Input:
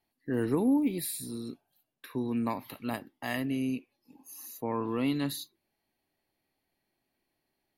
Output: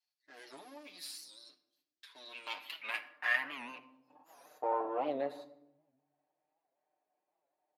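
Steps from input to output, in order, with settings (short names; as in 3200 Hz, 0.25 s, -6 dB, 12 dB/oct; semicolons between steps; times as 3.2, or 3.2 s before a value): half-wave gain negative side -12 dB; high shelf 2600 Hz -8 dB, from 2.15 s +4 dB, from 4.67 s -5 dB; reverb RT60 0.90 s, pre-delay 5 ms, DRR 9 dB; band-pass sweep 5100 Hz -> 670 Hz, 1.93–4.44; HPF 420 Hz 6 dB/oct; comb 6.6 ms, depth 93%; record warp 78 rpm, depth 160 cents; gain +7.5 dB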